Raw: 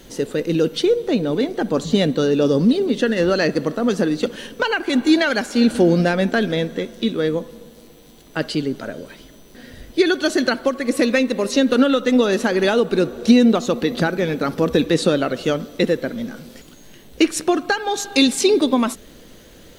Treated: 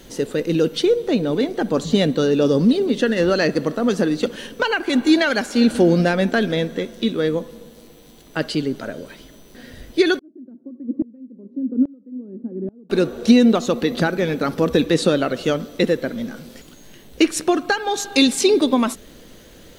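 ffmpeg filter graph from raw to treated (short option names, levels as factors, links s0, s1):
-filter_complex "[0:a]asettb=1/sr,asplit=3[s0][s1][s2];[s0]atrim=end=10.194[s3];[s1]atrim=start=10.19:end=12.9,asetpts=PTS-STARTPTS,afade=t=in:d=0.004:c=qsin,afade=t=out:st=2.706:d=0.004:c=qsin,asuperpass=centerf=240:order=4:qfactor=1.6,aeval=exprs='val(0)*pow(10,-24*if(lt(mod(-1.2*n/s,1),2*abs(-1.2)/1000),1-mod(-1.2*n/s,1)/(2*abs(-1.2)/1000),(mod(-1.2*n/s,1)-2*abs(-1.2)/1000)/(1-2*abs(-1.2)/1000))/20)':c=same[s4];[s2]atrim=start=12.896[s5];[s3][s4]acrossfade=d=0.004:c1=hsin:c2=qsin[s6];[s6][s5]acrossfade=d=0.004:c1=qsin:c2=hsin"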